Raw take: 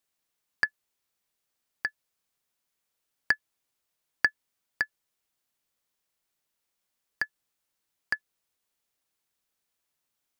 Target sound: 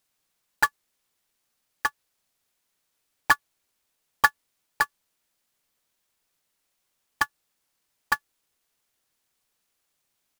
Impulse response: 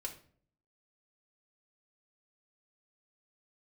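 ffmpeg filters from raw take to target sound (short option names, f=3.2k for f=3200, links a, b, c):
-filter_complex "[0:a]asplit=4[a][b][c][d];[b]asetrate=22050,aresample=44100,atempo=2,volume=-8dB[e];[c]asetrate=29433,aresample=44100,atempo=1.49831,volume=-3dB[f];[d]asetrate=37084,aresample=44100,atempo=1.18921,volume=-9dB[g];[a][e][f][g]amix=inputs=4:normalize=0,acrusher=bits=2:mode=log:mix=0:aa=0.000001,volume=2.5dB"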